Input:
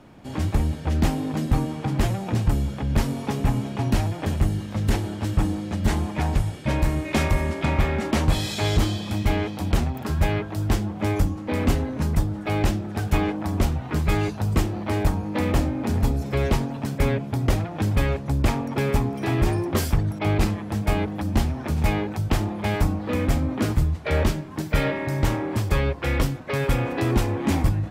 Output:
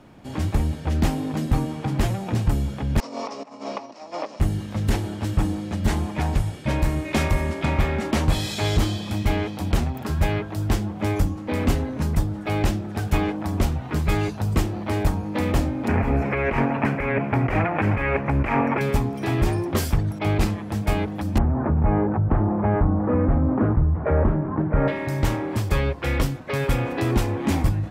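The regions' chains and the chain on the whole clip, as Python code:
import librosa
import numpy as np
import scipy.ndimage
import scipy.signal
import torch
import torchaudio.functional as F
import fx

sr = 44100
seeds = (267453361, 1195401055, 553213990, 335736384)

y = fx.chain(x, sr, fx.over_compress(threshold_db=-31.0, ratio=-1.0),
    fx.cabinet(low_hz=290.0, low_slope=24, high_hz=6300.0, hz=(370.0, 590.0, 1100.0, 1600.0, 3300.0, 5300.0), db=(-7, 8, 8, -8, -7, 9)), at=(3.0, 4.4))
y = fx.chain(y, sr, fx.curve_eq(hz=(110.0, 2400.0, 3600.0, 12000.0), db=(0, 14, -9, -14)),
    fx.over_compress(threshold_db=-21.0, ratio=-1.0), at=(15.88, 18.81))
y = fx.chain(y, sr, fx.lowpass(hz=1400.0, slope=24),
    fx.env_flatten(amount_pct=50), at=(21.38, 24.88))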